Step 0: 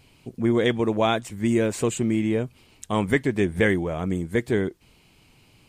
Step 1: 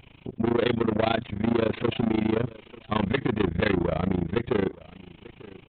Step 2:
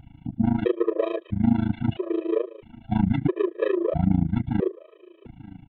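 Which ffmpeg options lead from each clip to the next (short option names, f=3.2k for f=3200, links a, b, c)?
-af "aresample=8000,asoftclip=type=tanh:threshold=-25.5dB,aresample=44100,aecho=1:1:898|1796:0.0891|0.0232,tremolo=f=27:d=0.947,volume=8.5dB"
-af "tiltshelf=f=1.1k:g=8,aeval=exprs='0.376*(cos(1*acos(clip(val(0)/0.376,-1,1)))-cos(1*PI/2))+0.00335*(cos(6*acos(clip(val(0)/0.376,-1,1)))-cos(6*PI/2))':c=same,afftfilt=real='re*gt(sin(2*PI*0.76*pts/sr)*(1-2*mod(floor(b*sr/1024/330),2)),0)':imag='im*gt(sin(2*PI*0.76*pts/sr)*(1-2*mod(floor(b*sr/1024/330),2)),0)':win_size=1024:overlap=0.75,volume=-1.5dB"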